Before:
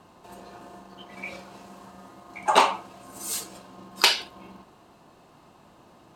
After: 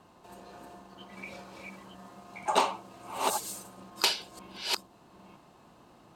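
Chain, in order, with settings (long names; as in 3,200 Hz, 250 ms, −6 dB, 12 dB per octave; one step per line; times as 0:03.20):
delay that plays each chunk backwards 488 ms, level −4.5 dB
dynamic equaliser 1,800 Hz, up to −6 dB, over −38 dBFS, Q 0.74
level −4.5 dB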